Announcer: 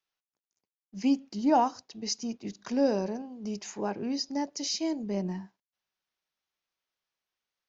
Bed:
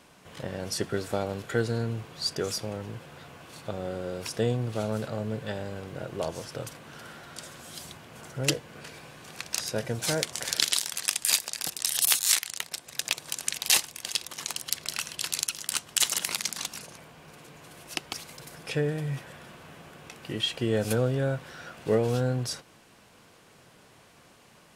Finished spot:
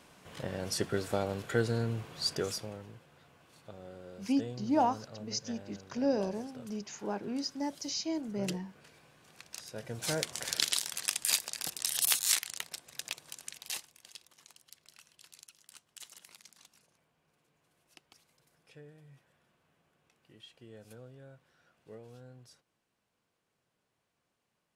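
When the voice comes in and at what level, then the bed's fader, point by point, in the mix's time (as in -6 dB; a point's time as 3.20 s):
3.25 s, -4.0 dB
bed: 2.37 s -2.5 dB
3.05 s -14.5 dB
9.68 s -14.5 dB
10.12 s -5 dB
12.53 s -5 dB
14.62 s -25.5 dB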